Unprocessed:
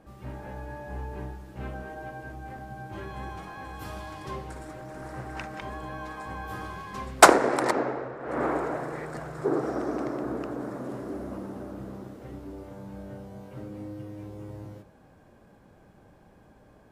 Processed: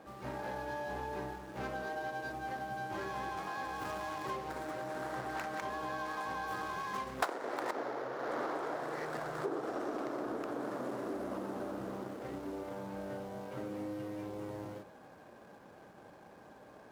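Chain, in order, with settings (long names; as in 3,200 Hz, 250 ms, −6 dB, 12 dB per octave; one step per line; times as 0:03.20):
running median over 15 samples
high-pass filter 560 Hz 6 dB per octave
downward compressor 5 to 1, threshold −42 dBFS, peak gain reduction 28 dB
level +6.5 dB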